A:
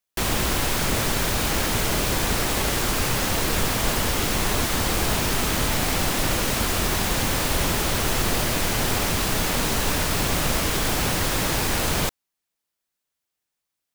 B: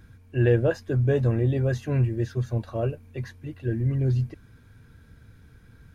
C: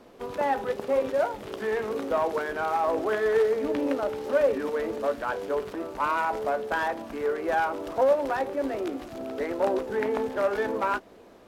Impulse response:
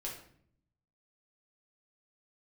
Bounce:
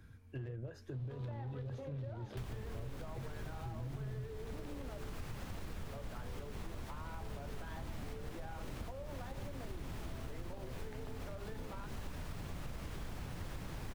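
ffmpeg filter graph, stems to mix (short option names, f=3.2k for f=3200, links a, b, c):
-filter_complex "[0:a]adelay=2200,volume=-3dB[a];[1:a]alimiter=limit=-21.5dB:level=0:latency=1:release=143,aeval=exprs='clip(val(0),-1,0.0562)':c=same,volume=-2.5dB[b];[2:a]equalizer=f=3.8k:t=o:w=0.86:g=10,adelay=900,volume=1.5dB,asplit=3[c][d][e];[c]atrim=end=5.14,asetpts=PTS-STARTPTS,afade=t=out:st=5.136:d=0.004:c=hsin[f];[d]atrim=start=5.14:end=5.87,asetpts=PTS-STARTPTS,volume=0[g];[e]atrim=start=5.87,asetpts=PTS-STARTPTS,afade=t=in:d=0.004:c=hsin[h];[f][g][h]concat=n=3:v=0:a=1[i];[a][i]amix=inputs=2:normalize=0,highshelf=f=3.4k:g=-9.5,acompressor=threshold=-27dB:ratio=6,volume=0dB[j];[b][j]amix=inputs=2:normalize=0,acrossover=split=180[k][l];[l]acompressor=threshold=-40dB:ratio=6[m];[k][m]amix=inputs=2:normalize=0,flanger=delay=9.9:depth=9:regen=-75:speed=1.9:shape=triangular,acompressor=threshold=-41dB:ratio=3"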